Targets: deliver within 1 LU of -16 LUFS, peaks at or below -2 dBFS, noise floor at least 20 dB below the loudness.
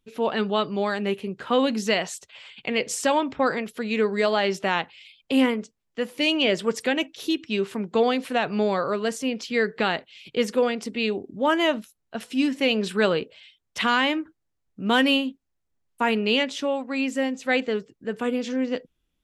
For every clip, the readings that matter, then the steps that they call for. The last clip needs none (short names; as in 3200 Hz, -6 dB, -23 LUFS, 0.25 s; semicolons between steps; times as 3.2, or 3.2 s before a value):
loudness -24.5 LUFS; peak -7.0 dBFS; loudness target -16.0 LUFS
-> gain +8.5 dB; limiter -2 dBFS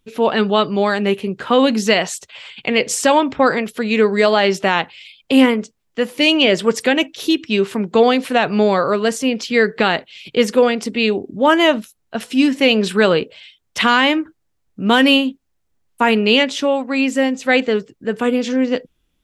loudness -16.5 LUFS; peak -2.0 dBFS; noise floor -68 dBFS